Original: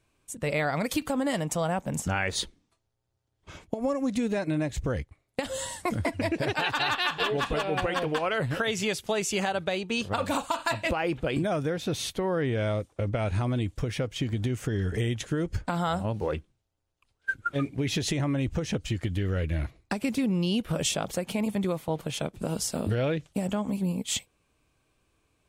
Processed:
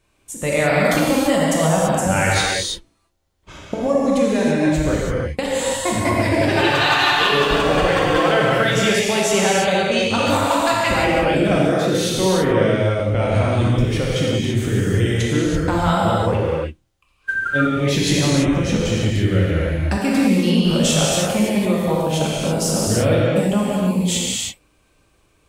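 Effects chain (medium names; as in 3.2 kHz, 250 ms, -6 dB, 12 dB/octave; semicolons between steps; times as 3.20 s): gated-style reverb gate 360 ms flat, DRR -5.5 dB; trim +5 dB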